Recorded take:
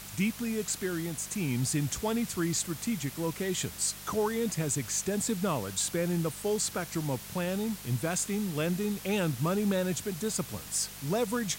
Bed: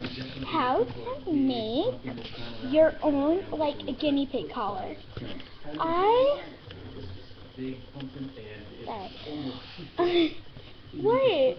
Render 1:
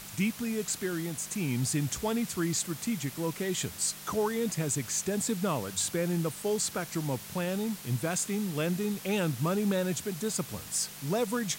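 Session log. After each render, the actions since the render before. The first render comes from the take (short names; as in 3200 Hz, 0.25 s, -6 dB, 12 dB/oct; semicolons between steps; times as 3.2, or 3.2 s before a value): de-hum 50 Hz, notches 2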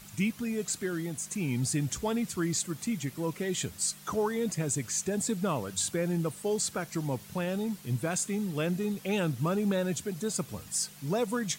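denoiser 8 dB, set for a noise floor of -45 dBFS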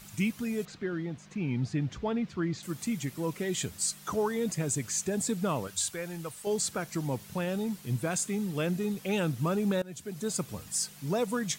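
0.65–2.63 air absorption 240 m; 5.67–6.47 bell 230 Hz -11.5 dB 2.4 oct; 9.82–10.29 fade in, from -21 dB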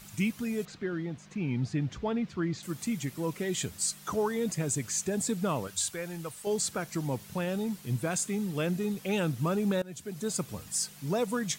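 nothing audible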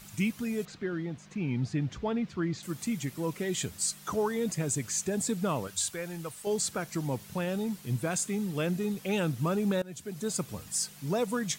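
5.84–6.45 sample gate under -56 dBFS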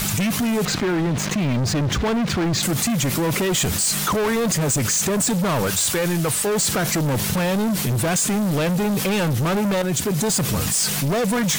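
sample leveller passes 5; fast leveller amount 70%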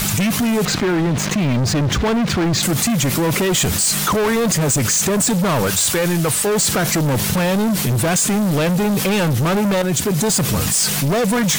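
gain +3.5 dB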